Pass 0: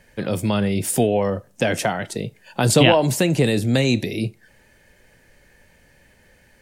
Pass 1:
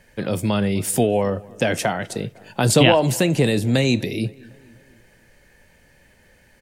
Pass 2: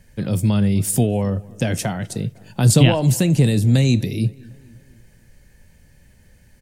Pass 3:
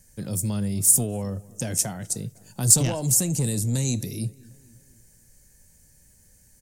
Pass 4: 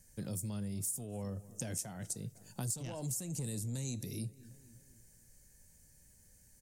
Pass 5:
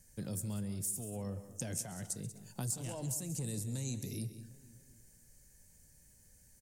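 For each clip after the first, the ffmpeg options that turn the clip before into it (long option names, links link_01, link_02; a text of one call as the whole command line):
ffmpeg -i in.wav -filter_complex "[0:a]asplit=2[link_01][link_02];[link_02]adelay=252,lowpass=frequency=2700:poles=1,volume=-23dB,asplit=2[link_03][link_04];[link_04]adelay=252,lowpass=frequency=2700:poles=1,volume=0.55,asplit=2[link_05][link_06];[link_06]adelay=252,lowpass=frequency=2700:poles=1,volume=0.55,asplit=2[link_07][link_08];[link_08]adelay=252,lowpass=frequency=2700:poles=1,volume=0.55[link_09];[link_01][link_03][link_05][link_07][link_09]amix=inputs=5:normalize=0" out.wav
ffmpeg -i in.wav -af "bass=frequency=250:gain=14,treble=frequency=4000:gain=8,volume=-6dB" out.wav
ffmpeg -i in.wav -af "asoftclip=type=tanh:threshold=-8.5dB,highshelf=frequency=4700:width_type=q:width=1.5:gain=13.5,volume=-8.5dB" out.wav
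ffmpeg -i in.wav -af "acompressor=threshold=-30dB:ratio=6,volume=-6.5dB" out.wav
ffmpeg -i in.wav -af "aecho=1:1:134|188:0.141|0.2" out.wav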